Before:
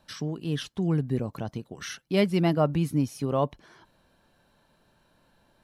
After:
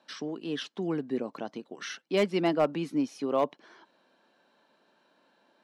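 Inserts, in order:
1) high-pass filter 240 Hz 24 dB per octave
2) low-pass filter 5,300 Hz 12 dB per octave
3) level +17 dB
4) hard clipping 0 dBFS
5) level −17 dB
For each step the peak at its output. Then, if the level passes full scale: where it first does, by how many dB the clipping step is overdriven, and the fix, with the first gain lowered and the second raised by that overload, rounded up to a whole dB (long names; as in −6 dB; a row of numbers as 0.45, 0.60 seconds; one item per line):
−12.0, −12.5, +4.5, 0.0, −17.0 dBFS
step 3, 4.5 dB
step 3 +12 dB, step 5 −12 dB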